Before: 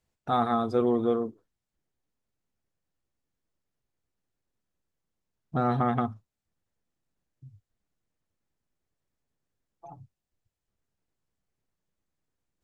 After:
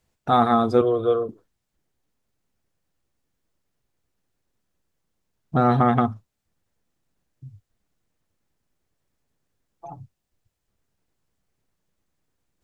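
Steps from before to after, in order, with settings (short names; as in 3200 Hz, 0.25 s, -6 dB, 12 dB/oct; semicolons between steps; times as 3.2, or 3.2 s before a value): 0.81–1.29 fixed phaser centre 1300 Hz, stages 8; gain +7.5 dB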